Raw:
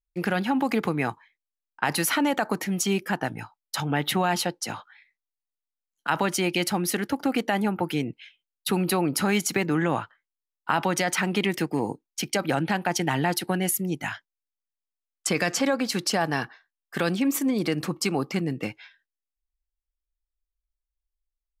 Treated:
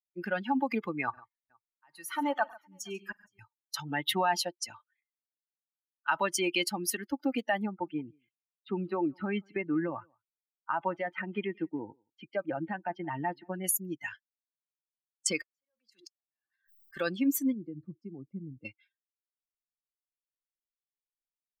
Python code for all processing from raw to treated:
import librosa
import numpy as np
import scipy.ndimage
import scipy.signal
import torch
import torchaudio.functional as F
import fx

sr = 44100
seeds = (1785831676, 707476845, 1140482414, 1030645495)

y = fx.chain(x, sr, fx.peak_eq(hz=1100.0, db=5.0, octaves=0.74),
    fx.auto_swell(attack_ms=728.0),
    fx.echo_multitap(ms=(48, 101, 141, 467), db=(-15.5, -13.0, -11.0, -17.0)), at=(1.03, 3.39))
y = fx.chain(y, sr, fx.air_absorb(metres=420.0),
    fx.echo_single(ms=175, db=-16.5), at=(7.66, 13.64))
y = fx.chain(y, sr, fx.low_shelf(hz=290.0, db=-11.0),
    fx.gate_flip(shuts_db=-19.0, range_db=-41),
    fx.pre_swell(db_per_s=47.0), at=(15.39, 16.97))
y = fx.chain(y, sr, fx.law_mismatch(coded='mu'),
    fx.bandpass_q(hz=110.0, q=0.6), at=(17.52, 18.65))
y = fx.bin_expand(y, sr, power=2.0)
y = fx.low_shelf(y, sr, hz=170.0, db=-11.5)
y = y + 0.38 * np.pad(y, (int(3.3 * sr / 1000.0), 0))[:len(y)]